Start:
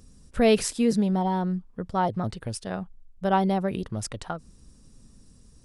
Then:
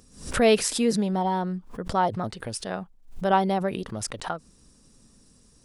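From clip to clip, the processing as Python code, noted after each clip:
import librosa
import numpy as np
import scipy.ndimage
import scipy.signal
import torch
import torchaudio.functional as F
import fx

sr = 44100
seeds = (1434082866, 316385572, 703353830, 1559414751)

y = fx.low_shelf(x, sr, hz=180.0, db=-11.0)
y = fx.pre_swell(y, sr, db_per_s=120.0)
y = y * 10.0 ** (2.5 / 20.0)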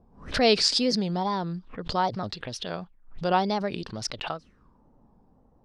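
y = fx.wow_flutter(x, sr, seeds[0], rate_hz=2.1, depth_cents=140.0)
y = fx.envelope_lowpass(y, sr, base_hz=740.0, top_hz=4800.0, q=5.2, full_db=-29.0, direction='up')
y = y * 10.0 ** (-2.5 / 20.0)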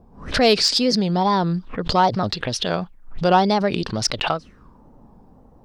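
y = fx.rider(x, sr, range_db=3, speed_s=0.5)
y = 10.0 ** (-12.5 / 20.0) * np.tanh(y / 10.0 ** (-12.5 / 20.0))
y = y * 10.0 ** (8.0 / 20.0)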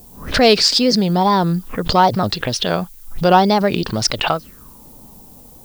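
y = fx.dmg_noise_colour(x, sr, seeds[1], colour='violet', level_db=-49.0)
y = y * 10.0 ** (4.0 / 20.0)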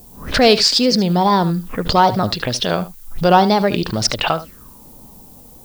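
y = x + 10.0 ** (-15.0 / 20.0) * np.pad(x, (int(74 * sr / 1000.0), 0))[:len(x)]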